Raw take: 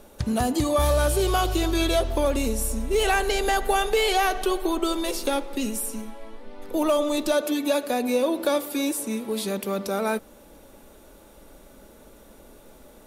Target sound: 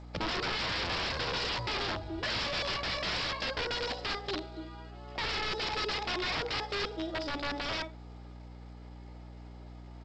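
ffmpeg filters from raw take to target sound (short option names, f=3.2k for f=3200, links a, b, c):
-filter_complex "[0:a]highpass=66,asplit=2[a][b];[b]aecho=0:1:71|142|213:0.335|0.0636|0.0121[c];[a][c]amix=inputs=2:normalize=0,asetrate=64194,aresample=44100,atempo=0.686977,aemphasis=mode=production:type=cd,atempo=1.3,aresample=11025,aeval=exprs='(mod(11.9*val(0)+1,2)-1)/11.9':c=same,aresample=44100,equalizer=f=110:w=6.5:g=5,aeval=exprs='val(0)+0.0112*(sin(2*PI*60*n/s)+sin(2*PI*2*60*n/s)/2+sin(2*PI*3*60*n/s)/3+sin(2*PI*4*60*n/s)/4+sin(2*PI*5*60*n/s)/5)':c=same,volume=-7dB" -ar 16000 -c:a g722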